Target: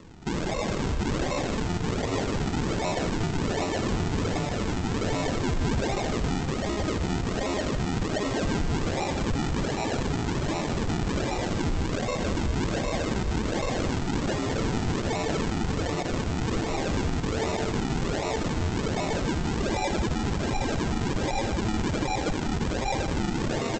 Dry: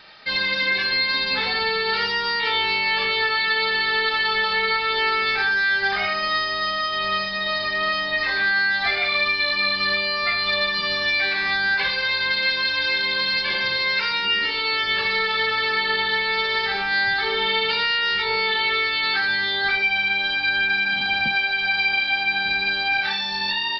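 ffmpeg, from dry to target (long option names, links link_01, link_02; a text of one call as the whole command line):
ffmpeg -i in.wav -af "aresample=16000,acrusher=samples=20:mix=1:aa=0.000001:lfo=1:lforange=20:lforate=1.3,aresample=44100,alimiter=limit=-21dB:level=0:latency=1:release=61,aecho=1:1:78.72|154.5:0.282|0.282" out.wav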